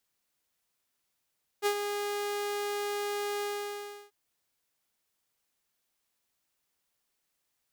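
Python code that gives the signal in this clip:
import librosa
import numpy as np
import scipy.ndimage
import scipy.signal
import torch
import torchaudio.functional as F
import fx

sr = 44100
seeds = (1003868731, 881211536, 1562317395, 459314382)

y = fx.adsr_tone(sr, wave='saw', hz=410.0, attack_ms=41.0, decay_ms=77.0, sustain_db=-7.5, held_s=1.8, release_ms=688.0, level_db=-21.0)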